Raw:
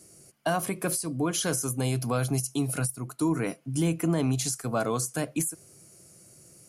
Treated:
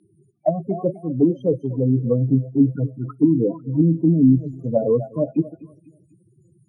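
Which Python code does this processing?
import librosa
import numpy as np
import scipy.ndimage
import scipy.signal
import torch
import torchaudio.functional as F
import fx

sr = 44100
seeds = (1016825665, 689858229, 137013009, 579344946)

y = fx.peak_eq(x, sr, hz=1700.0, db=-8.0, octaves=0.61)
y = fx.leveller(y, sr, passes=1)
y = fx.spec_topn(y, sr, count=8)
y = fx.echo_feedback(y, sr, ms=248, feedback_pct=38, wet_db=-17)
y = fx.envelope_lowpass(y, sr, base_hz=260.0, top_hz=4000.0, q=3.1, full_db=-20.5, direction='down')
y = F.gain(torch.from_numpy(y), 3.5).numpy()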